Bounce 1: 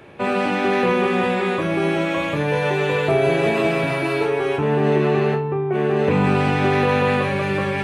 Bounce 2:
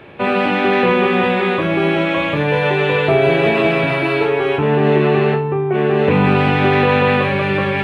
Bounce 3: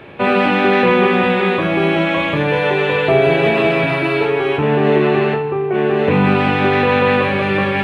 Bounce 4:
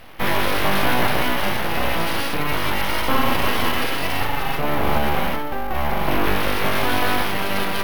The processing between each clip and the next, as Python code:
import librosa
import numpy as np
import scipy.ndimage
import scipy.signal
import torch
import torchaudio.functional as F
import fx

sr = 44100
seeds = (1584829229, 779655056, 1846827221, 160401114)

y1 = fx.high_shelf_res(x, sr, hz=4600.0, db=-9.5, q=1.5)
y1 = F.gain(torch.from_numpy(y1), 4.0).numpy()
y2 = fx.rider(y1, sr, range_db=10, speed_s=2.0)
y2 = fx.rev_plate(y2, sr, seeds[0], rt60_s=2.0, hf_ratio=0.95, predelay_ms=0, drr_db=12.5)
y3 = np.abs(y2)
y3 = np.repeat(scipy.signal.resample_poly(y3, 1, 3), 3)[:len(y3)]
y3 = F.gain(torch.from_numpy(y3), -3.0).numpy()